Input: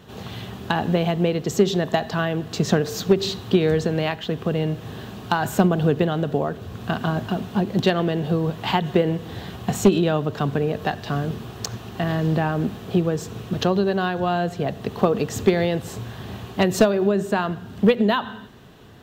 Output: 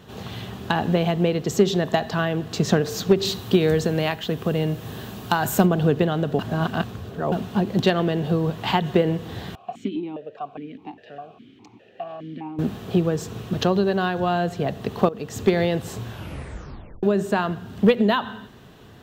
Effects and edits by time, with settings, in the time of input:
0:03.25–0:05.66: high-shelf EQ 8,600 Hz +11 dB
0:06.39–0:07.32: reverse
0:09.55–0:12.59: formant filter that steps through the vowels 4.9 Hz
0:15.09–0:15.56: fade in, from −16.5 dB
0:16.09: tape stop 0.94 s

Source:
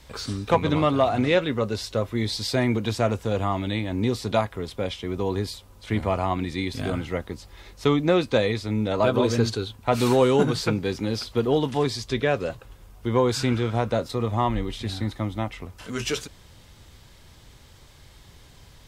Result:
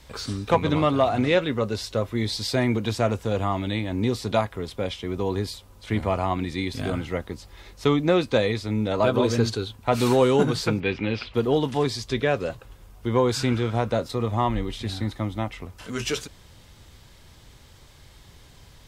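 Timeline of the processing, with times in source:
0:10.80–0:11.34: low-pass with resonance 2,600 Hz, resonance Q 3.7

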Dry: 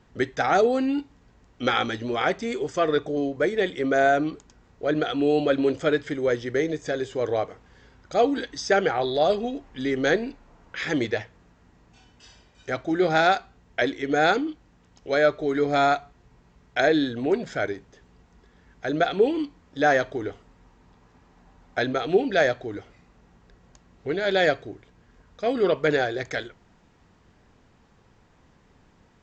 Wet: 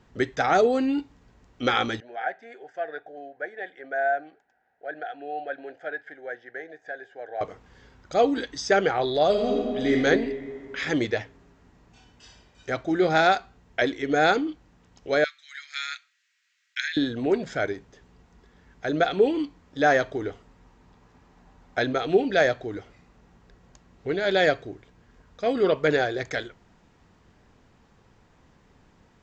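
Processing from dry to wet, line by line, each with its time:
0:02.00–0:07.41: pair of resonant band-passes 1,100 Hz, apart 1.1 octaves
0:09.30–0:09.94: thrown reverb, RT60 2.2 s, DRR −2 dB
0:15.24–0:16.97: Butterworth high-pass 1,700 Hz

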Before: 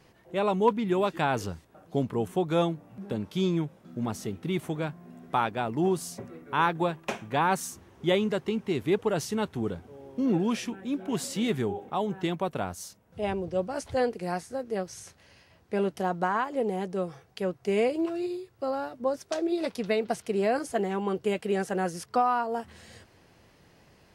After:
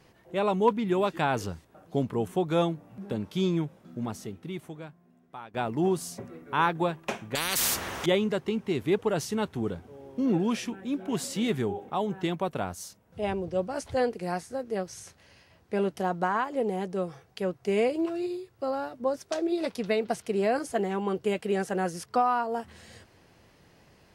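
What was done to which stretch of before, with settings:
0:03.81–0:05.54: fade out quadratic, to −17 dB
0:07.35–0:08.06: every bin compressed towards the loudest bin 10 to 1

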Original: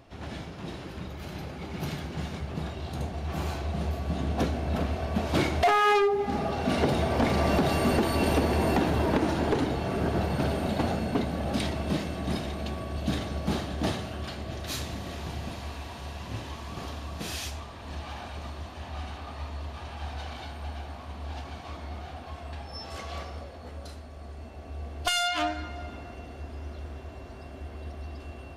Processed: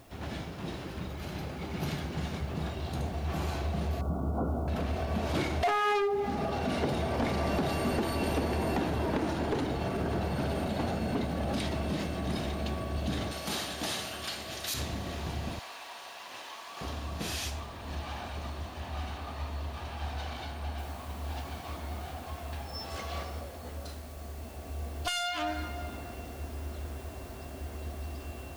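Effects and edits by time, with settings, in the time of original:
0:04.01–0:04.68: linear-phase brick-wall low-pass 1,500 Hz
0:13.31–0:14.74: spectral tilt +3.5 dB per octave
0:15.59–0:16.81: high-pass filter 740 Hz
0:20.78: noise floor change −65 dB −56 dB
whole clip: brickwall limiter −23.5 dBFS

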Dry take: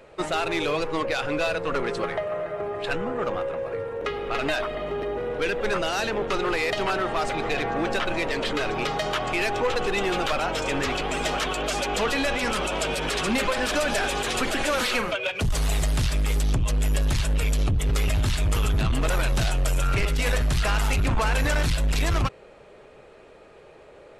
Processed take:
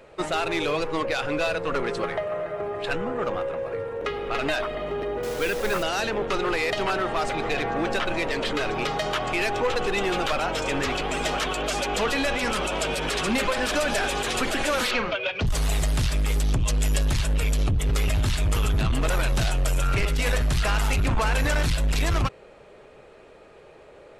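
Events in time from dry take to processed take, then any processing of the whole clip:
0:05.23–0:05.83: bit-depth reduction 6 bits, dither none
0:14.91–0:15.47: low-pass filter 5,200 Hz 24 dB per octave
0:16.59–0:17.03: parametric band 5,900 Hz +5.5 dB 1.9 octaves

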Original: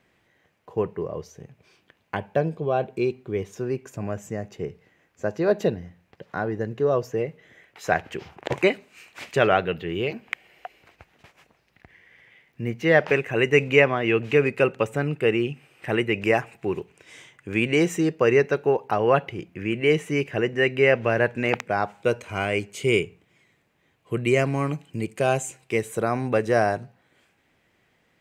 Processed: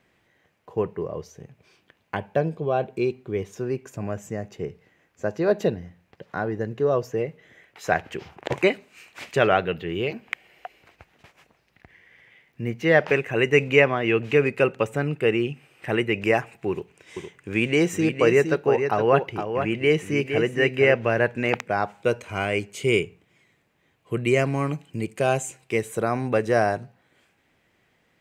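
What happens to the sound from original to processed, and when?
0:16.70–0:20.94: single-tap delay 463 ms −7 dB

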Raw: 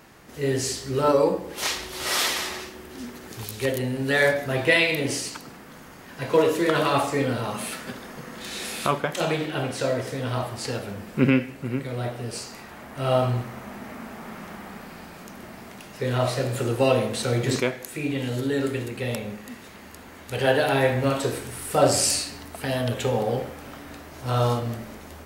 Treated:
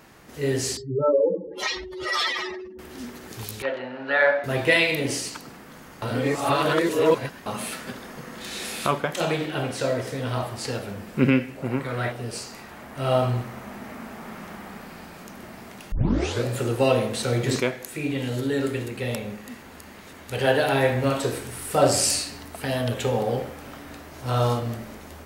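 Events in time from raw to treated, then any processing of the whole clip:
0:00.77–0:02.79: expanding power law on the bin magnitudes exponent 3
0:03.62–0:04.44: loudspeaker in its box 410–3,400 Hz, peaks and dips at 420 Hz −8 dB, 610 Hz +5 dB, 890 Hz +4 dB, 1,400 Hz +8 dB, 2,100 Hz −3 dB, 3,300 Hz −5 dB
0:06.02–0:07.46: reverse
0:11.56–0:12.11: parametric band 540 Hz → 2,100 Hz +12 dB 1.1 octaves
0:15.92: tape start 0.54 s
0:19.62–0:20.13: reverse

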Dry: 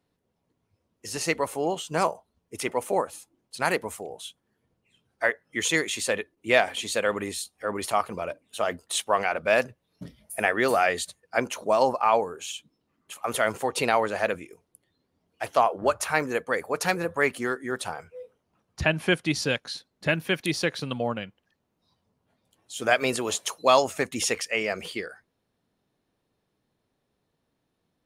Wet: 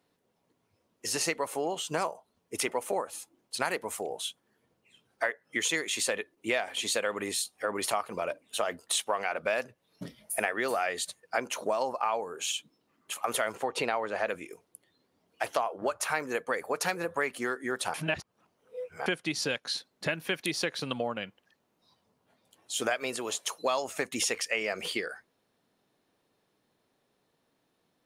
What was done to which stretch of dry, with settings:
0:13.55–0:14.27: low-pass filter 3,000 Hz 6 dB per octave
0:17.94–0:19.06: reverse
0:22.89–0:23.83: duck −8.5 dB, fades 0.41 s
whole clip: parametric band 62 Hz −9 dB 0.47 octaves; downward compressor 5 to 1, threshold −31 dBFS; low-shelf EQ 170 Hz −11.5 dB; level +4.5 dB

